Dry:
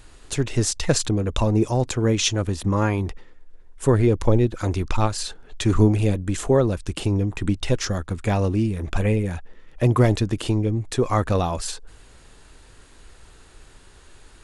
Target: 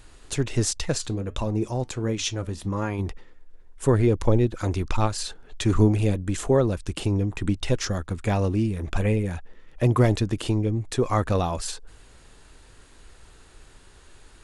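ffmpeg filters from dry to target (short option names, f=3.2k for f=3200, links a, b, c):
-filter_complex "[0:a]asplit=3[a][b][c];[a]afade=t=out:st=0.82:d=0.02[d];[b]flanger=delay=4.8:depth=3.3:regen=-79:speed=1.4:shape=triangular,afade=t=in:st=0.82:d=0.02,afade=t=out:st=2.98:d=0.02[e];[c]afade=t=in:st=2.98:d=0.02[f];[d][e][f]amix=inputs=3:normalize=0,volume=-2dB"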